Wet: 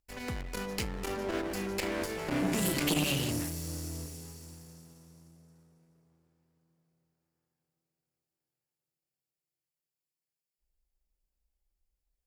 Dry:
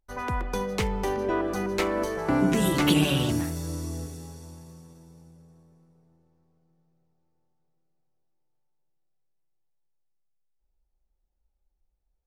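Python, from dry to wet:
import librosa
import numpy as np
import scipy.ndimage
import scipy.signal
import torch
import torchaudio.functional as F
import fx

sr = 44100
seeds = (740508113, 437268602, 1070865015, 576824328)

y = fx.lower_of_two(x, sr, delay_ms=0.4)
y = fx.high_shelf(y, sr, hz=3000.0, db=9.0)
y = fx.transformer_sat(y, sr, knee_hz=750.0)
y = y * librosa.db_to_amplitude(-5.5)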